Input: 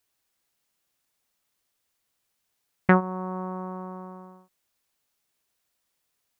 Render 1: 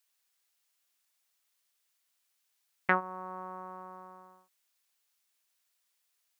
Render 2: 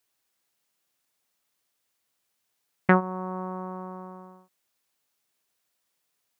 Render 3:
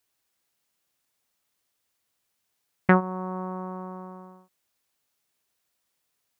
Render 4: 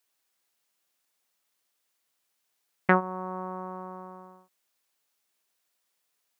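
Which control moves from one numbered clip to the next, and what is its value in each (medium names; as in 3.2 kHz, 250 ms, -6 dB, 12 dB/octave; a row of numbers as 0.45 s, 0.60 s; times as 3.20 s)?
high-pass, cutoff frequency: 1.5 kHz, 130 Hz, 46 Hz, 350 Hz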